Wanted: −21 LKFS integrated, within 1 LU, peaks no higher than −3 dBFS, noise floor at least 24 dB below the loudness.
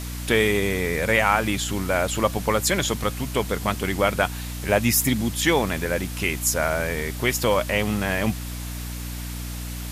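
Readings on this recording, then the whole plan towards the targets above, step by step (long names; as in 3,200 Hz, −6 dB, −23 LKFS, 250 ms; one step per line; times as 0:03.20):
mains hum 60 Hz; hum harmonics up to 300 Hz; level of the hum −30 dBFS; background noise floor −32 dBFS; target noise floor −48 dBFS; integrated loudness −23.5 LKFS; sample peak −4.0 dBFS; target loudness −21.0 LKFS
→ hum removal 60 Hz, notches 5
broadband denoise 16 dB, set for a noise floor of −32 dBFS
level +2.5 dB
brickwall limiter −3 dBFS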